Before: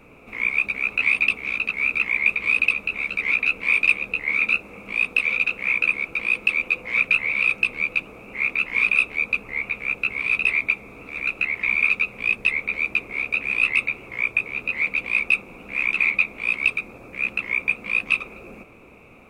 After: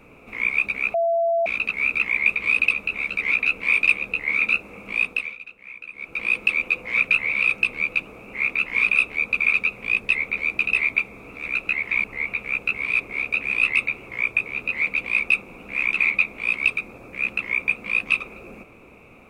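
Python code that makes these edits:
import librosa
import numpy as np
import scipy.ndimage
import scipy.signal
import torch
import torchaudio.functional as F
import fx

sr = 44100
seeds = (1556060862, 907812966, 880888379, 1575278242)

y = fx.edit(x, sr, fx.bleep(start_s=0.94, length_s=0.52, hz=673.0, db=-17.5),
    fx.fade_down_up(start_s=5.01, length_s=1.26, db=-18.0, fade_s=0.35),
    fx.swap(start_s=9.4, length_s=0.96, other_s=11.76, other_length_s=1.24), tone=tone)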